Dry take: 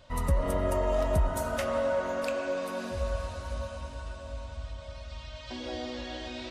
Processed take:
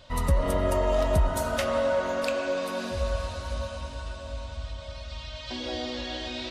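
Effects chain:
parametric band 3,900 Hz +5 dB 1.1 octaves
level +3 dB

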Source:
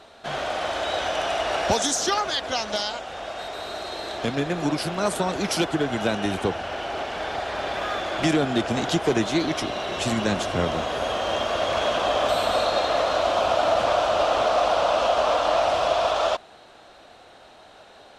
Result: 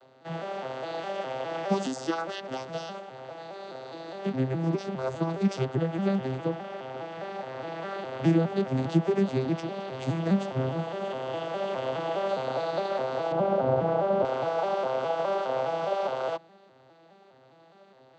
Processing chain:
vocoder with an arpeggio as carrier major triad, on C3, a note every 206 ms
0:13.32–0:14.25: spectral tilt −4 dB per octave
level −4.5 dB

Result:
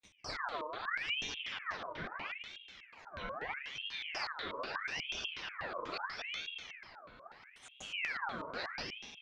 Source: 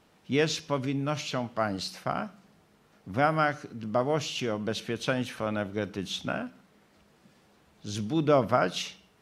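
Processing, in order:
every frequency bin delayed by itself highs early, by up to 294 ms
noise gate with hold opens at −48 dBFS
parametric band 690 Hz +11.5 dB 2 octaves
brickwall limiter −22.5 dBFS, peak gain reduction 19.5 dB
reversed playback
downward compressor 6 to 1, threshold −41 dBFS, peak gain reduction 14 dB
reversed playback
granular cloud
on a send: feedback delay with all-pass diffusion 758 ms, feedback 43%, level −15 dB
on the sum: feedback delay network reverb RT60 1.5 s, low-frequency decay 0.9×, high-frequency decay 0.8×, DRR 0 dB
auto-filter low-pass square 4.1 Hz 270–3,100 Hz
ring modulator whose carrier an LFO sweeps 1,900 Hz, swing 60%, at 0.77 Hz
level +1.5 dB

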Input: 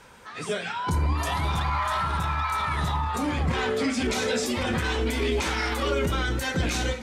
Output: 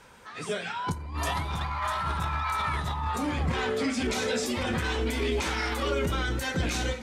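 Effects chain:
0:00.92–0:03.14: compressor whose output falls as the input rises −27 dBFS, ratio −0.5
level −2.5 dB

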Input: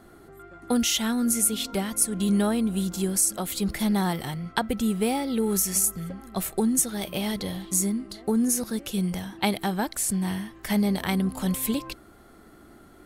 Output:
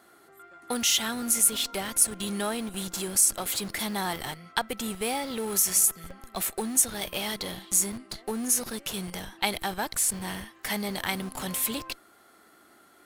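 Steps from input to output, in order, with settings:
high-pass filter 1,100 Hz 6 dB per octave
in parallel at −10 dB: comparator with hysteresis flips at −37 dBFS
on the sum: level +1 dB

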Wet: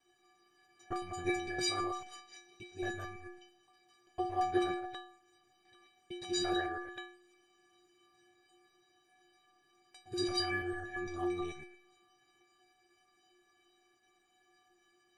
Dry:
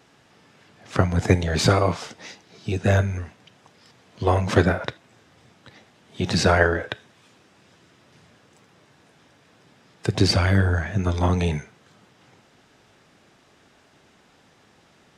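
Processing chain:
reversed piece by piece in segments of 113 ms
stiff-string resonator 350 Hz, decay 0.7 s, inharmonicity 0.03
level +6 dB

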